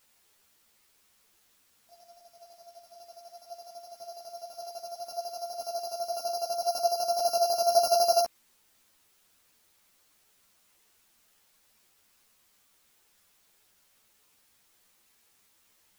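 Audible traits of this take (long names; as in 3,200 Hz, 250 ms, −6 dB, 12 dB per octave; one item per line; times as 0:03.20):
a buzz of ramps at a fixed pitch in blocks of 8 samples
chopped level 12 Hz, depth 60%, duty 35%
a quantiser's noise floor 12 bits, dither triangular
a shimmering, thickened sound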